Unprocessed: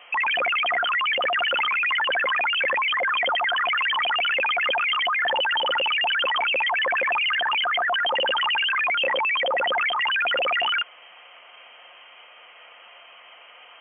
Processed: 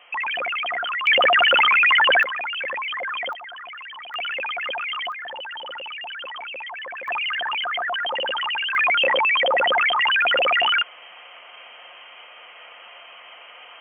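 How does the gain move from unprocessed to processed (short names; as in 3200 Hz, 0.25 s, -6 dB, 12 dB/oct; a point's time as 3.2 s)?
-3 dB
from 1.07 s +7 dB
from 2.23 s -5 dB
from 3.33 s -14.5 dB
from 4.14 s -5 dB
from 5.12 s -11 dB
from 7.08 s -2.5 dB
from 8.75 s +4 dB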